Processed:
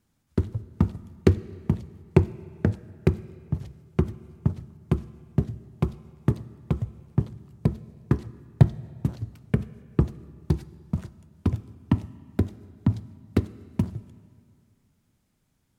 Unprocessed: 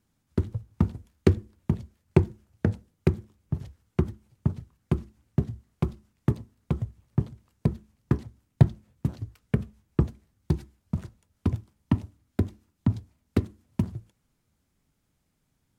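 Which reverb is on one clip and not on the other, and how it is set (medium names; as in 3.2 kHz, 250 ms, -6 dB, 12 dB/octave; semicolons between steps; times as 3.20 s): algorithmic reverb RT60 2.4 s, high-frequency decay 0.8×, pre-delay 10 ms, DRR 18 dB; trim +1.5 dB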